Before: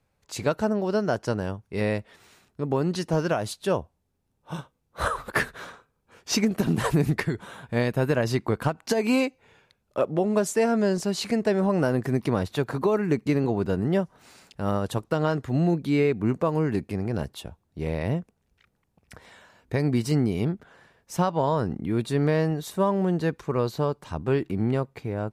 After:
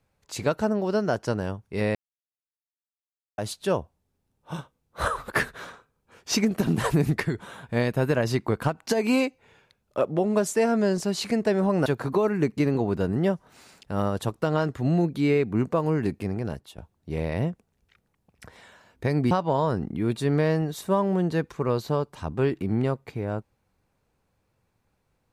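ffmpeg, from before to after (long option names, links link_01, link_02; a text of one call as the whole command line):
ffmpeg -i in.wav -filter_complex "[0:a]asplit=6[link_01][link_02][link_03][link_04][link_05][link_06];[link_01]atrim=end=1.95,asetpts=PTS-STARTPTS,afade=type=out:start_time=1.946:duration=0.004:curve=hsin[link_07];[link_02]atrim=start=1.95:end=3.38,asetpts=PTS-STARTPTS,volume=0[link_08];[link_03]atrim=start=3.38:end=11.862,asetpts=PTS-STARTPTS,afade=type=in:duration=0.004:curve=hsin[link_09];[link_04]atrim=start=12.548:end=17.47,asetpts=PTS-STARTPTS,afade=type=out:start_time=4.422:duration=0.5:silence=0.316228[link_10];[link_05]atrim=start=17.47:end=20.002,asetpts=PTS-STARTPTS,afade=type=in:duration=0.004:curve=hsin:silence=0.316228[link_11];[link_06]atrim=start=21.198[link_12];[link_07][link_08][link_09]concat=n=3:v=0:a=1[link_13];[link_10][link_11]concat=n=2:v=0:a=1[link_14];[link_13][link_14]acrossfade=duration=0.004:curve1=hsin:curve2=hsin[link_15];[link_15][link_12]acrossfade=duration=0.004:curve1=hsin:curve2=hsin" out.wav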